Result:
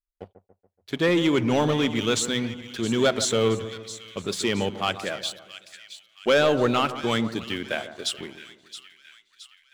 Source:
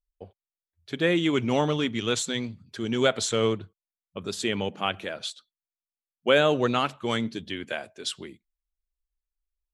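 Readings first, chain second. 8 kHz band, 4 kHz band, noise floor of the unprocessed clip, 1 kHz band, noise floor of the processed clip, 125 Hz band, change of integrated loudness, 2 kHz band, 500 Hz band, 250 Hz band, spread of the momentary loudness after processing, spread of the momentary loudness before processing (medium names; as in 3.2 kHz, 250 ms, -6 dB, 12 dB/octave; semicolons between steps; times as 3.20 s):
+4.0 dB, +2.5 dB, under -85 dBFS, +2.0 dB, -71 dBFS, +2.5 dB, +2.0 dB, +1.5 dB, +2.0 dB, +3.0 dB, 21 LU, 13 LU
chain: waveshaping leveller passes 2; two-band feedback delay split 1.7 kHz, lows 142 ms, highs 670 ms, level -12.5 dB; trim -4 dB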